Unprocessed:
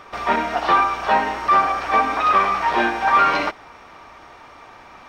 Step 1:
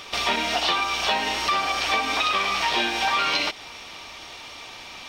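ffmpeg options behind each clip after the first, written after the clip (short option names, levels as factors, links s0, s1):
-af "highshelf=f=2200:t=q:w=1.5:g=13,acompressor=threshold=0.1:ratio=6"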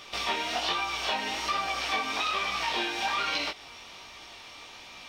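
-af "flanger=delay=16.5:depth=7.1:speed=1.2,volume=0.668"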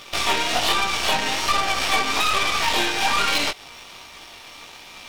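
-af "aeval=exprs='sgn(val(0))*max(abs(val(0))-0.002,0)':c=same,aeval=exprs='0.15*(cos(1*acos(clip(val(0)/0.15,-1,1)))-cos(1*PI/2))+0.0211*(cos(8*acos(clip(val(0)/0.15,-1,1)))-cos(8*PI/2))':c=same,volume=2.51"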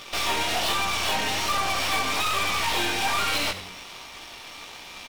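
-filter_complex "[0:a]asoftclip=type=hard:threshold=0.1,asplit=5[s0][s1][s2][s3][s4];[s1]adelay=91,afreqshift=-93,volume=0.251[s5];[s2]adelay=182,afreqshift=-186,volume=0.108[s6];[s3]adelay=273,afreqshift=-279,volume=0.0462[s7];[s4]adelay=364,afreqshift=-372,volume=0.02[s8];[s0][s5][s6][s7][s8]amix=inputs=5:normalize=0"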